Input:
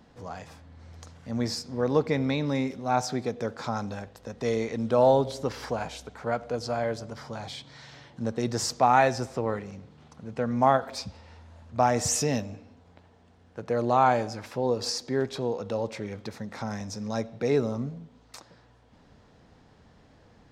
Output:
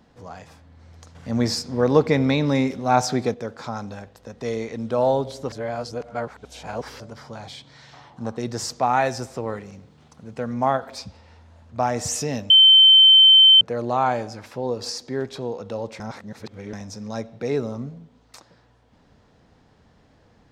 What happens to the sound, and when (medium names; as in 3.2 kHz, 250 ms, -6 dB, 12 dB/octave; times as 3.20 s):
1.15–3.34 s: gain +7 dB
5.52–7.00 s: reverse
7.93–8.37 s: high-order bell 950 Hz +9.5 dB 1.1 oct
9.05–10.54 s: treble shelf 6.2 kHz +7.5 dB
12.50–13.61 s: bleep 3.09 kHz -8 dBFS
16.00–16.73 s: reverse